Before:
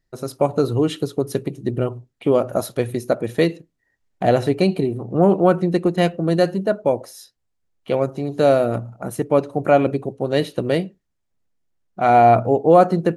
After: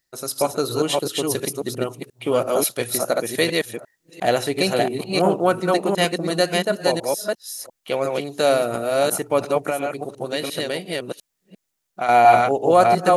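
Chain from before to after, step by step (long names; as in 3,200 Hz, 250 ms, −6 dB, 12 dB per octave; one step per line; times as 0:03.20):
delay that plays each chunk backwards 350 ms, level −2 dB
spectral tilt +3.5 dB per octave
0:09.57–0:12.09: downward compressor 6 to 1, threshold −21 dBFS, peak gain reduction 10 dB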